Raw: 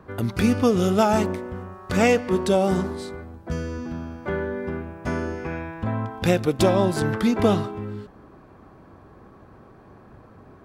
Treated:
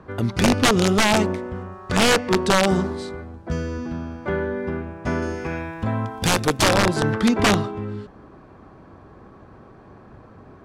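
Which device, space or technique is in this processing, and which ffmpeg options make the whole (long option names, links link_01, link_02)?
overflowing digital effects unit: -filter_complex "[0:a]asettb=1/sr,asplit=3[link_01][link_02][link_03];[link_01]atrim=end=5.224[link_04];[link_02]atrim=start=5.22:end=6.77,asetpts=PTS-STARTPTS,afade=type=in:duration=0.004:curve=qsin,afade=type=out:start_time=1.546:duration=0.004:curve=qsin,aemphasis=mode=production:type=50fm[link_05];[link_03]atrim=start=6.766[link_06];[link_04][link_05]acrossfade=duration=0.004:curve1=hsin:curve2=qsin[link_07];[link_07][link_06]acrossfade=duration=0.004:curve1=qsin:curve2=hsin,aeval=exprs='(mod(3.98*val(0)+1,2)-1)/3.98':channel_layout=same,lowpass=8000,volume=2.5dB"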